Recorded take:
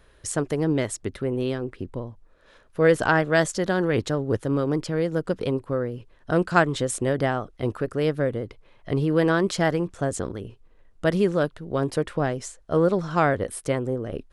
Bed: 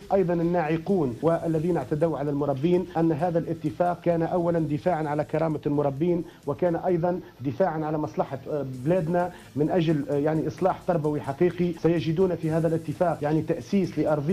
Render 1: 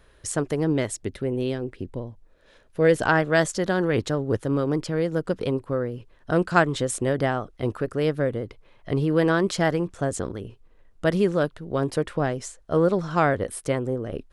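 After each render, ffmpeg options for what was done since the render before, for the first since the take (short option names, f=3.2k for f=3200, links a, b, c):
-filter_complex "[0:a]asettb=1/sr,asplit=3[a][b][c];[a]atrim=end=0.874[d];[b]atrim=start=0.87:end=3.03,asetpts=PTS-STARTPTS,afade=t=in:d=0.004:c=qsin,afade=t=out:st=2.156:d=0.004:c=qsin,equalizer=f=1.2k:w=2.1:g=-6.5[e];[c]atrim=start=3.026[f];[d][e]acrossfade=d=0.004:c1=hsin:c2=qsin[g];[g][f]acrossfade=d=0.004:c1=qsin:c2=hsin"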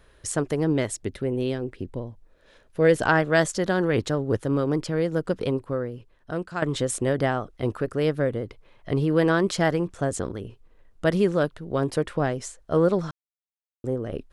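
-filter_complex "[0:a]asplit=4[a][b][c][d];[a]atrim=end=6.62,asetpts=PTS-STARTPTS,afade=t=out:st=5.49:d=1.13:silence=0.223872[e];[b]atrim=start=6.62:end=13.11,asetpts=PTS-STARTPTS,afade=t=in:d=0.004:c=hsin:silence=0.223872,afade=t=out:st=6.486:d=0.004:c=hsin[f];[c]atrim=start=13.11:end=13.84,asetpts=PTS-STARTPTS,volume=0[g];[d]atrim=start=13.84,asetpts=PTS-STARTPTS,afade=t=in:d=0.004:c=hsin[h];[e][f][g][h]concat=n=4:v=0:a=1"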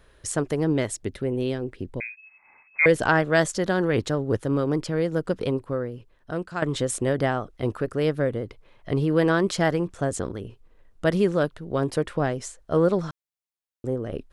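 -filter_complex "[0:a]asettb=1/sr,asplit=3[a][b][c];[a]atrim=end=2.004[d];[b]atrim=start=2:end=2.86,asetpts=PTS-STARTPTS,afade=t=in:d=0.004:c=qsin,afade=t=out:st=0.856:d=0.004:c=qsin,lowpass=f=2.2k:t=q:w=0.5098,lowpass=f=2.2k:t=q:w=0.6013,lowpass=f=2.2k:t=q:w=0.9,lowpass=f=2.2k:t=q:w=2.563,afreqshift=-2600[e];[c]atrim=start=2.856[f];[d][e]acrossfade=d=0.004:c1=hsin:c2=qsin[g];[g][f]acrossfade=d=0.004:c1=qsin:c2=hsin"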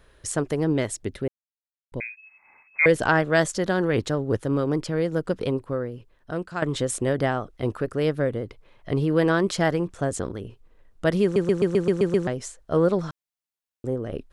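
-filter_complex "[0:a]asplit=11[a][b][c][d][e][f][g][h][i][j][k];[a]atrim=end=1.28,asetpts=PTS-STARTPTS,afade=t=out:st=1.276:d=0.004:c=hsin[l];[b]atrim=start=1.28:end=1.92,asetpts=PTS-STARTPTS,volume=0[m];[c]atrim=start=1.92:end=11.362,asetpts=PTS-STARTPTS,afade=t=in:d=0.004:c=hsin[n];[d]atrim=start=11.228:end=11.362[o];[e]atrim=start=11.228:end=11.362[p];[f]atrim=start=11.228:end=11.362[q];[g]atrim=start=11.228:end=11.362[r];[h]atrim=start=11.228:end=11.362[s];[i]atrim=start=11.228:end=11.362[t];[j]atrim=start=11.228:end=11.362[u];[k]atrim=start=12.268[v];[l][m][n]concat=n=3:v=0:a=1[w];[w][o]acrossfade=d=0.004:c1=hsin:c2=hsin[x];[x][p]acrossfade=d=0.004:c1=hsin:c2=hsin[y];[y][q]acrossfade=d=0.004:c1=hsin:c2=hsin[z];[z][r]acrossfade=d=0.004:c1=hsin:c2=hsin[aa];[aa][s]acrossfade=d=0.004:c1=hsin:c2=hsin[ab];[ab][t]acrossfade=d=0.004:c1=hsin:c2=hsin[ac];[ac][u]acrossfade=d=0.004:c1=hsin:c2=hsin[ad];[ad][v]acrossfade=d=0.004:c1=hsin:c2=hsin"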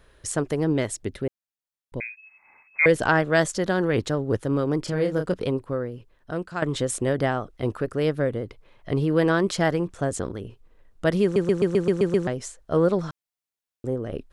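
-filter_complex "[0:a]asettb=1/sr,asplit=3[a][b][c];[a]atrim=end=4.814[d];[b]atrim=start=4.81:end=5.34,asetpts=PTS-STARTPTS,afade=t=in:d=0.004:c=qsin,afade=t=out:st=0.526:d=0.004:c=qsin,asplit=2[e][f];[f]adelay=33,volume=-5.5dB[g];[e][g]amix=inputs=2:normalize=0,atrim=end_sample=23373[h];[c]atrim=start=5.336[i];[d][h]acrossfade=d=0.004:c1=hsin:c2=qsin[j];[j][i]acrossfade=d=0.004:c1=qsin:c2=hsin"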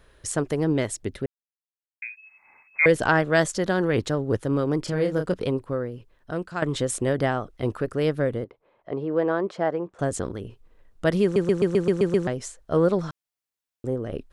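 -filter_complex "[0:a]asettb=1/sr,asplit=3[a][b][c];[a]atrim=end=8.444[d];[b]atrim=start=8.44:end=9.99,asetpts=PTS-STARTPTS,afade=t=in:d=0.004:c=qsin,afade=t=out:st=1.546:d=0.004:c=qsin,bandpass=f=630:t=q:w=0.91[e];[c]atrim=start=9.986[f];[d][e]acrossfade=d=0.004:c1=hsin:c2=qsin[g];[g][f]acrossfade=d=0.004:c1=qsin:c2=hsin,asplit=3[h][i][j];[h]atrim=end=1.26,asetpts=PTS-STARTPTS,afade=t=out:st=1.256:d=0.004:c=hsin[k];[i]atrim=start=1.26:end=2.02,asetpts=PTS-STARTPTS,volume=0[l];[j]atrim=start=2.02,asetpts=PTS-STARTPTS,afade=t=in:d=0.004:c=hsin[m];[k][l][m]concat=n=3:v=0:a=1"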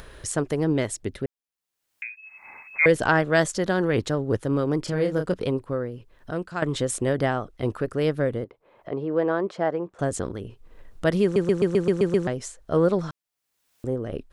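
-af "acompressor=mode=upward:threshold=-33dB:ratio=2.5"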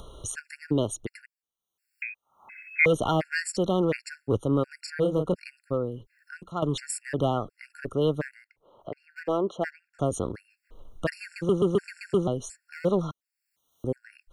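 -filter_complex "[0:a]acrossover=split=240|1600[a][b][c];[b]asoftclip=type=hard:threshold=-19.5dB[d];[a][d][c]amix=inputs=3:normalize=0,afftfilt=real='re*gt(sin(2*PI*1.4*pts/sr)*(1-2*mod(floor(b*sr/1024/1400),2)),0)':imag='im*gt(sin(2*PI*1.4*pts/sr)*(1-2*mod(floor(b*sr/1024/1400),2)),0)':win_size=1024:overlap=0.75"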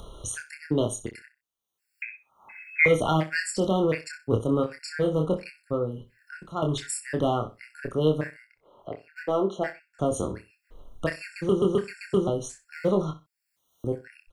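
-filter_complex "[0:a]asplit=2[a][b];[b]adelay=26,volume=-5dB[c];[a][c]amix=inputs=2:normalize=0,aecho=1:1:63|126:0.178|0.0356"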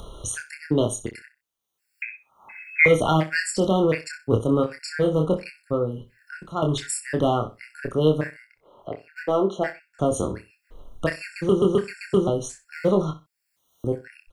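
-af "volume=3.5dB"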